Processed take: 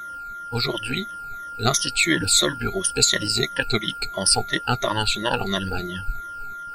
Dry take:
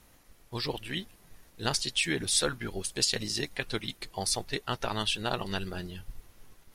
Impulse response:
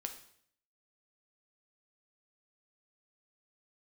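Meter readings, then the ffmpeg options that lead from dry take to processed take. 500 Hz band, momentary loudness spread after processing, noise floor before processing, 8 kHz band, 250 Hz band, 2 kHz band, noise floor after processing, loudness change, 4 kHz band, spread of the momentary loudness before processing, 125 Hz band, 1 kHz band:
+8.5 dB, 15 LU, −60 dBFS, +10.0 dB, +9.0 dB, +10.5 dB, −35 dBFS, +9.5 dB, +9.0 dB, 11 LU, +9.0 dB, +11.5 dB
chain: -af "afftfilt=real='re*pow(10,21/40*sin(2*PI*(1.2*log(max(b,1)*sr/1024/100)/log(2)-(-2.9)*(pts-256)/sr)))':imag='im*pow(10,21/40*sin(2*PI*(1.2*log(max(b,1)*sr/1024/100)/log(2)-(-2.9)*(pts-256)/sr)))':win_size=1024:overlap=0.75,aeval=exprs='val(0)+0.0141*sin(2*PI*1400*n/s)':channel_layout=same,volume=5dB"

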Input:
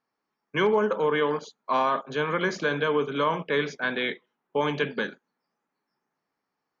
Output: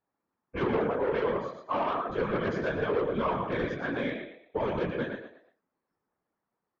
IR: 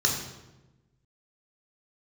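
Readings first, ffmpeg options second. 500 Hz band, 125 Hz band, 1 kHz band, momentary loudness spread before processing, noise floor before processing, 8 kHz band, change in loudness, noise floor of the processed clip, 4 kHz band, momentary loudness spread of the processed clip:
−3.5 dB, −1.0 dB, −5.0 dB, 9 LU, −83 dBFS, can't be measured, −4.0 dB, below −85 dBFS, −11.0 dB, 7 LU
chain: -filter_complex "[0:a]lowpass=frequency=1000:poles=1,flanger=delay=19.5:depth=2.9:speed=0.52,equalizer=frequency=170:width_type=o:width=0.42:gain=3,asplit=5[link_01][link_02][link_03][link_04][link_05];[link_02]adelay=115,afreqshift=36,volume=-5.5dB[link_06];[link_03]adelay=230,afreqshift=72,volume=-15.4dB[link_07];[link_04]adelay=345,afreqshift=108,volume=-25.3dB[link_08];[link_05]adelay=460,afreqshift=144,volume=-35.2dB[link_09];[link_01][link_06][link_07][link_08][link_09]amix=inputs=5:normalize=0,aeval=exprs='0.2*(cos(1*acos(clip(val(0)/0.2,-1,1)))-cos(1*PI/2))+0.0562*(cos(5*acos(clip(val(0)/0.2,-1,1)))-cos(5*PI/2))':channel_layout=same,afftfilt=real='hypot(re,im)*cos(2*PI*random(0))':imag='hypot(re,im)*sin(2*PI*random(1))':win_size=512:overlap=0.75"

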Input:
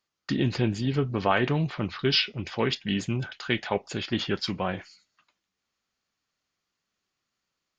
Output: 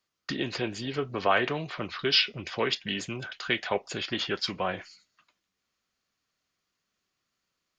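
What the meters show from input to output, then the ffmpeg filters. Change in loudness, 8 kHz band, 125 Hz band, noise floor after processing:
−1.5 dB, can't be measured, −10.5 dB, −83 dBFS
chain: -filter_complex "[0:a]bandreject=frequency=850:width=12,acrossover=split=370|950[link_01][link_02][link_03];[link_01]acompressor=threshold=-39dB:ratio=6[link_04];[link_04][link_02][link_03]amix=inputs=3:normalize=0,volume=1dB"

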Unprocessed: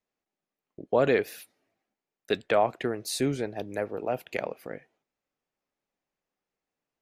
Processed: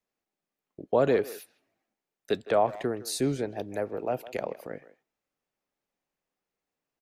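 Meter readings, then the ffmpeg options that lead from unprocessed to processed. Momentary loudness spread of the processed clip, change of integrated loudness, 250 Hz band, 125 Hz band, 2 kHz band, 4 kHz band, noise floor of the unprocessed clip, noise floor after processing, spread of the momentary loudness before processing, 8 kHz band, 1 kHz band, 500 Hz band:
14 LU, −0.5 dB, 0.0 dB, 0.0 dB, −5.0 dB, −2.5 dB, below −85 dBFS, below −85 dBFS, 16 LU, 0.0 dB, −0.5 dB, 0.0 dB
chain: -filter_complex "[0:a]acrossover=split=350|1600|3400[link_01][link_02][link_03][link_04];[link_03]acompressor=threshold=-53dB:ratio=6[link_05];[link_01][link_02][link_05][link_04]amix=inputs=4:normalize=0,asplit=2[link_06][link_07];[link_07]adelay=160,highpass=300,lowpass=3400,asoftclip=type=hard:threshold=-20dB,volume=-16dB[link_08];[link_06][link_08]amix=inputs=2:normalize=0"

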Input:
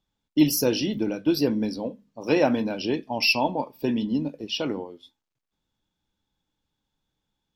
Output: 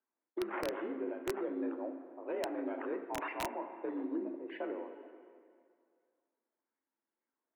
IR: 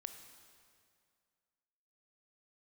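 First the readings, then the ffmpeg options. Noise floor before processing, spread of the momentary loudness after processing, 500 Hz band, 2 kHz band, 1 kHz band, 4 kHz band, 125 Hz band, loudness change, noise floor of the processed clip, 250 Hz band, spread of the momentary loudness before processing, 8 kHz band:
−83 dBFS, 9 LU, −11.5 dB, −15.0 dB, −10.5 dB, −23.5 dB, −26.5 dB, −14.5 dB, below −85 dBFS, −15.5 dB, 10 LU, −19.5 dB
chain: -filter_complex "[0:a]acrusher=samples=9:mix=1:aa=0.000001:lfo=1:lforange=5.4:lforate=0.82,alimiter=limit=-17dB:level=0:latency=1:release=221,highpass=frequency=200:width_type=q:width=0.5412,highpass=frequency=200:width_type=q:width=1.307,lowpass=frequency=2100:width_type=q:width=0.5176,lowpass=frequency=2100:width_type=q:width=0.7071,lowpass=frequency=2100:width_type=q:width=1.932,afreqshift=56,bandreject=frequency=50:width_type=h:width=6,bandreject=frequency=100:width_type=h:width=6,bandreject=frequency=150:width_type=h:width=6,bandreject=frequency=200:width_type=h:width=6,bandreject=frequency=250:width_type=h:width=6,bandreject=frequency=300:width_type=h:width=6,bandreject=frequency=350:width_type=h:width=6,bandreject=frequency=400:width_type=h:width=6[link_01];[1:a]atrim=start_sample=2205[link_02];[link_01][link_02]afir=irnorm=-1:irlink=0,aeval=exprs='(mod(12.6*val(0)+1,2)-1)/12.6':channel_layout=same,volume=-5dB"

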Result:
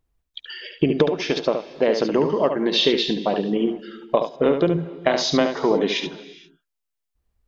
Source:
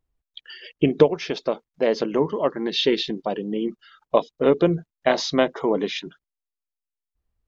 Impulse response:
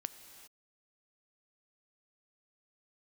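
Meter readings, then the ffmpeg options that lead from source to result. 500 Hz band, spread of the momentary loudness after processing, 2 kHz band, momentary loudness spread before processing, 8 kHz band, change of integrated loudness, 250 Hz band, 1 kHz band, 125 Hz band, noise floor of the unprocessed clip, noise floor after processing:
+1.0 dB, 14 LU, +2.0 dB, 10 LU, can't be measured, +1.5 dB, +2.0 dB, +1.5 dB, +1.5 dB, below −85 dBFS, −80 dBFS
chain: -filter_complex "[0:a]acompressor=threshold=-19dB:ratio=6,asplit=2[link_01][link_02];[1:a]atrim=start_sample=2205,adelay=72[link_03];[link_02][link_03]afir=irnorm=-1:irlink=0,volume=-4.5dB[link_04];[link_01][link_04]amix=inputs=2:normalize=0,volume=4.5dB"

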